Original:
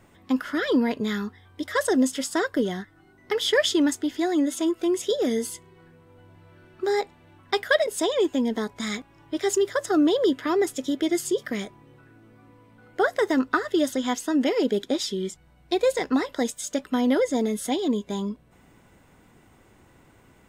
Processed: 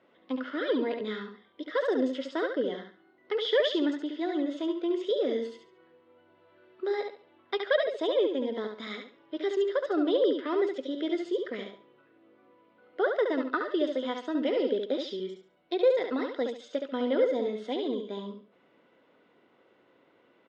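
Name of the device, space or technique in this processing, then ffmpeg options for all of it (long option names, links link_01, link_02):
phone earpiece: -af "highpass=420,equalizer=frequency=520:width_type=q:width=4:gain=4,equalizer=frequency=800:width_type=q:width=4:gain=-7,equalizer=frequency=1100:width_type=q:width=4:gain=-3,equalizer=frequency=1700:width_type=q:width=4:gain=-5,equalizer=frequency=2400:width_type=q:width=4:gain=-5,lowpass=frequency=3600:width=0.5412,lowpass=frequency=3600:width=1.3066,equalizer=frequency=230:width_type=o:width=1.9:gain=3,aecho=1:1:70|140|210|280:0.531|0.143|0.0387|0.0104,volume=-4dB"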